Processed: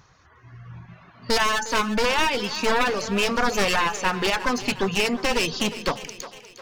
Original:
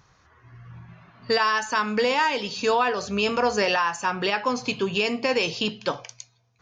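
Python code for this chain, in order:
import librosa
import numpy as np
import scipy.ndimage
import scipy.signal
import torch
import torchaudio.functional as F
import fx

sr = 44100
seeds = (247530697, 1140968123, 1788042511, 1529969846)

y = np.minimum(x, 2.0 * 10.0 ** (-24.5 / 20.0) - x)
y = fx.dereverb_blind(y, sr, rt60_s=0.5)
y = fx.echo_split(y, sr, split_hz=350.0, low_ms=156, high_ms=357, feedback_pct=52, wet_db=-14)
y = y * librosa.db_to_amplitude(3.5)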